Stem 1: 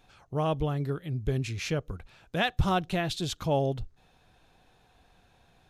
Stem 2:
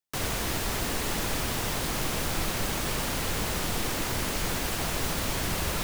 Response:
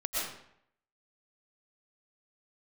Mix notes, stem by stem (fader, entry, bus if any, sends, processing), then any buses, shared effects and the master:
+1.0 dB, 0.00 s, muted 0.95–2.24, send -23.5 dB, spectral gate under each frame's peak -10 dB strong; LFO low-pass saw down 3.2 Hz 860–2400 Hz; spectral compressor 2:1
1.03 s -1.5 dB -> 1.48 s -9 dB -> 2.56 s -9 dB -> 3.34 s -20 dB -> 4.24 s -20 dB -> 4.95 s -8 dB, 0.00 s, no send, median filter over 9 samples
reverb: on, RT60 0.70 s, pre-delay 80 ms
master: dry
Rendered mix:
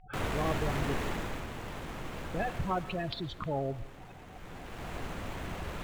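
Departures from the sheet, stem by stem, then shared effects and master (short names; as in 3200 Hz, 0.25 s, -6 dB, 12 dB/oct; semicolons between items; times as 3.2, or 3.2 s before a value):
stem 1 +1.0 dB -> -8.0 dB; master: extra high shelf 10000 Hz -4 dB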